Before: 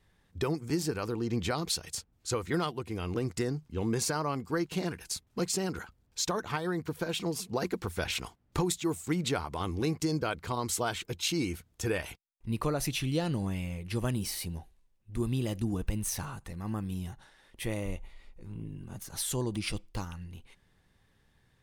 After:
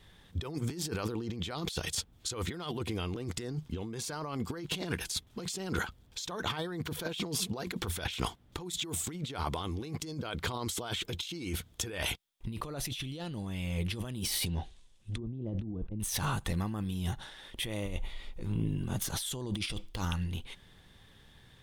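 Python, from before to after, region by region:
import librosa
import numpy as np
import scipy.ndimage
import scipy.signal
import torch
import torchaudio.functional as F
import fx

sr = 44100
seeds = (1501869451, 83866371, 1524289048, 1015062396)

y = fx.chain(x, sr, fx.lowpass(hz=9700.0, slope=24),
    fx.env_lowpass_down(base_hz=500.0, full_db=-27.5),
    fx.high_shelf(hz=3600.0, db=11.0), at=(14.46, 16.0))
y = fx.peak_eq(y, sr, hz=3400.0, db=9.5, octaves=0.35)
y = fx.over_compress(y, sr, threshold_db=-39.0, ratio=-1.0)
y = y * 10.0 ** (3.0 / 20.0)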